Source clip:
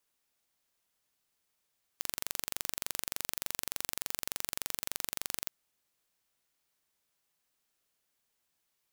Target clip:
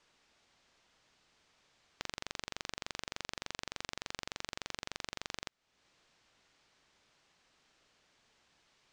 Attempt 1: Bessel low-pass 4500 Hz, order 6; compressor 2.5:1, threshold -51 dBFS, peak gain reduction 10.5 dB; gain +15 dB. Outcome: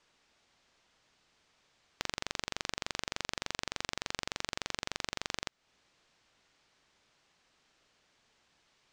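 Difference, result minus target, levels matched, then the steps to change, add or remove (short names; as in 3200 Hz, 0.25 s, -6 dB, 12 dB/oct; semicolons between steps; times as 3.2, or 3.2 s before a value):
compressor: peak gain reduction -5 dB
change: compressor 2.5:1, threshold -59.5 dBFS, peak gain reduction 15.5 dB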